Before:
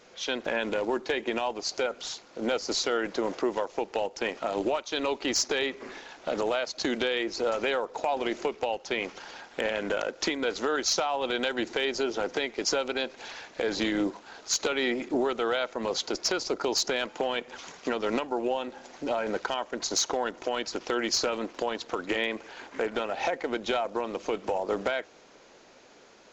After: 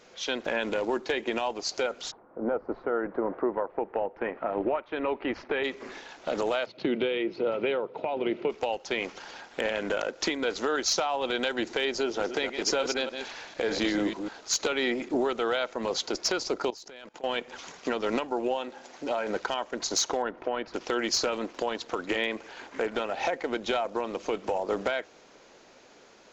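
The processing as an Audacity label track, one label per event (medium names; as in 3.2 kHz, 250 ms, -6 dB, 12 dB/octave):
2.100000	5.630000	low-pass 1.2 kHz -> 2.6 kHz 24 dB/octave
6.660000	8.500000	cabinet simulation 110–3000 Hz, peaks and dips at 120 Hz +10 dB, 180 Hz +6 dB, 380 Hz +4 dB, 760 Hz -6 dB, 1.1 kHz -6 dB, 1.7 kHz -9 dB
12.050000	14.380000	chunks repeated in reverse 149 ms, level -7 dB
16.700000	17.240000	level held to a coarse grid steps of 23 dB
18.540000	19.300000	bass shelf 170 Hz -8 dB
20.220000	20.740000	low-pass 2 kHz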